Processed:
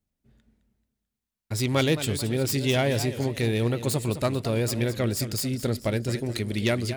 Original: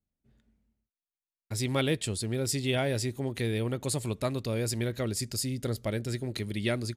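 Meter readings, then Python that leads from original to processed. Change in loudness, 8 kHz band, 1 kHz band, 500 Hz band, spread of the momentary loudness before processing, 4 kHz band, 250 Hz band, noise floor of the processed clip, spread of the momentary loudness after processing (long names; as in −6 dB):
+5.0 dB, +2.0 dB, +5.5 dB, +5.0 dB, 5 LU, +4.5 dB, +5.5 dB, below −85 dBFS, 5 LU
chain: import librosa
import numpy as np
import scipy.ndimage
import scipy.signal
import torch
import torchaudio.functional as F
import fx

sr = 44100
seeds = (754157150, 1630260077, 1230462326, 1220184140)

y = fx.self_delay(x, sr, depth_ms=0.066)
y = fx.echo_warbled(y, sr, ms=218, feedback_pct=43, rate_hz=2.8, cents=171, wet_db=-12.0)
y = y * 10.0 ** (5.0 / 20.0)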